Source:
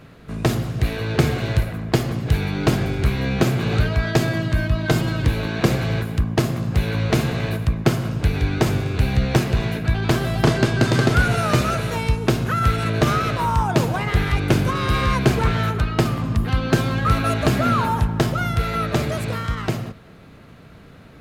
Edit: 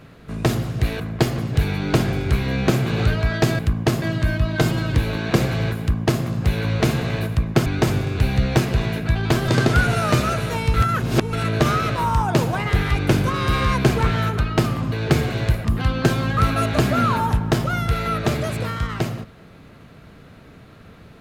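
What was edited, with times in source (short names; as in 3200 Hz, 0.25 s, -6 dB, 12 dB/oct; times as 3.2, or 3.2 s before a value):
1–1.73 move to 16.33
6.1–6.53 copy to 4.32
7.96–8.45 cut
10.27–10.89 cut
12.15–12.74 reverse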